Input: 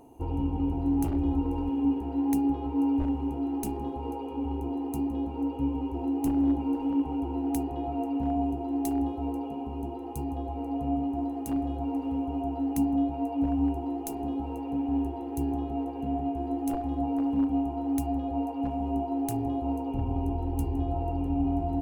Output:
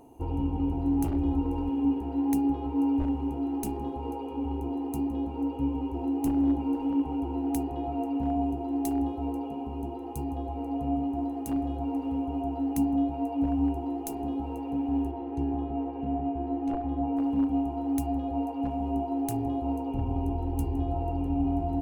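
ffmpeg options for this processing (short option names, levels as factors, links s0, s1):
-filter_complex "[0:a]asettb=1/sr,asplit=3[s0][s1][s2];[s0]atrim=end=15.114[s3];[s1]atrim=start=15.11:end=17.17,asetpts=PTS-STARTPTS,afade=t=in:d=0.004:c=qsin,afade=t=out:st=2.056:d=0.004:c=qsin,lowpass=2900[s4];[s2]atrim=start=17.166[s5];[s3][s4]acrossfade=d=0.004:c1=hsin:c2=qsin[s6];[s6][s5]acrossfade=d=0.004:c1=qsin:c2=hsin"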